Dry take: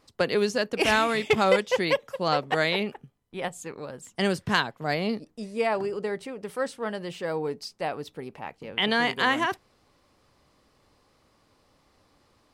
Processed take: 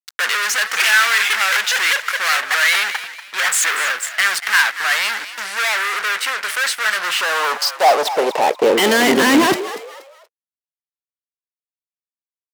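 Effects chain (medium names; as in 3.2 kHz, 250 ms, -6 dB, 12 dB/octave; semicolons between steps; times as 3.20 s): 3.38–3.92 s: jump at every zero crossing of -38 dBFS; treble shelf 2.7 kHz -4 dB; fuzz box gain 45 dB, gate -51 dBFS; high-pass sweep 1.6 kHz -> 88 Hz, 6.90–10.60 s; frequency-shifting echo 238 ms, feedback 32%, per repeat +90 Hz, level -13 dB; trim -1 dB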